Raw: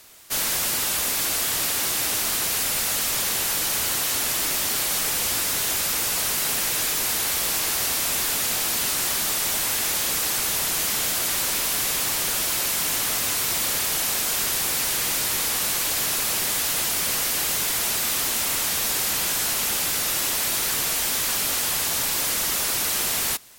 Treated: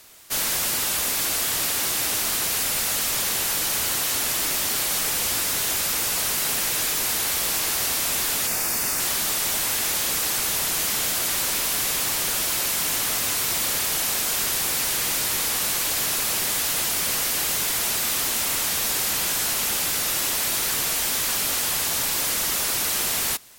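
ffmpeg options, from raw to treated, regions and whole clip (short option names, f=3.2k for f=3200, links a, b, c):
-filter_complex "[0:a]asettb=1/sr,asplit=3[a][b][c];[a]atrim=end=8.474[d];[b]atrim=start=8.47:end=9,asetpts=PTS-STARTPTS,afade=t=in:d=0.004:c=qsin,afade=t=out:st=0.526:d=0.004:c=qsin,acrusher=bits=6:dc=4:mix=0:aa=0.000001,equalizer=f=3.2k:w=5.3:g=-11.5,bandreject=f=4k:w=7.2[e];[c]atrim=start=8.996[f];[d][e]acrossfade=d=0.004:c1=hsin:c2=qsin[g];[g][f]acrossfade=d=0.004:c1=qsin:c2=hsin"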